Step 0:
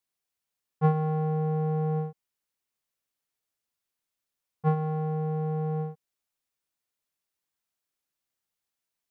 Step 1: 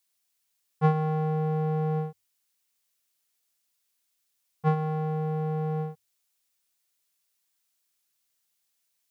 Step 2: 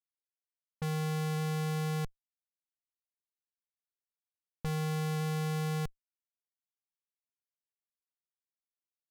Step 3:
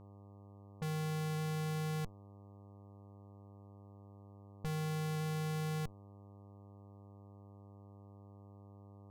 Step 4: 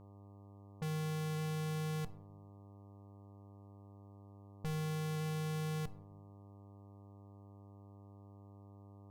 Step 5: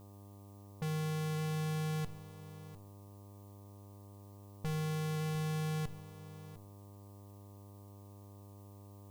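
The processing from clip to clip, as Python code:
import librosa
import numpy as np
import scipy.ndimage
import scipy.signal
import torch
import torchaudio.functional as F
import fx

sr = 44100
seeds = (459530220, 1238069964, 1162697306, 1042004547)

y1 = fx.high_shelf(x, sr, hz=2100.0, db=11.5)
y1 = fx.hum_notches(y1, sr, base_hz=50, count=2)
y2 = fx.echo_banded(y1, sr, ms=524, feedback_pct=44, hz=920.0, wet_db=-12.5)
y2 = fx.schmitt(y2, sr, flips_db=-28.5)
y2 = fx.env_lowpass(y2, sr, base_hz=490.0, full_db=-36.0)
y3 = fx.dmg_buzz(y2, sr, base_hz=100.0, harmonics=12, level_db=-51.0, tilt_db=-6, odd_only=False)
y3 = y3 * librosa.db_to_amplitude(-4.5)
y4 = fx.room_shoebox(y3, sr, seeds[0], volume_m3=870.0, walls='furnished', distance_m=0.39)
y4 = y4 * librosa.db_to_amplitude(-1.0)
y5 = fx.dmg_noise_colour(y4, sr, seeds[1], colour='blue', level_db=-71.0)
y5 = y5 + 10.0 ** (-16.5 / 20.0) * np.pad(y5, (int(702 * sr / 1000.0), 0))[:len(y5)]
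y5 = y5 * librosa.db_to_amplitude(2.0)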